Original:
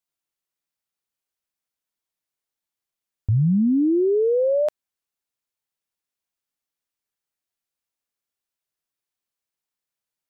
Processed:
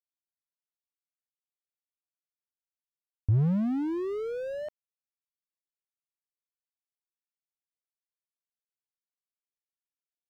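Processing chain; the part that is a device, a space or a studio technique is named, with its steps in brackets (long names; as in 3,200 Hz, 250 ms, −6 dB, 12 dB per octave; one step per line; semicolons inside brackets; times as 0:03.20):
early transistor amplifier (dead-zone distortion −49 dBFS; slew-rate limiting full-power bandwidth 16 Hz)
level −3 dB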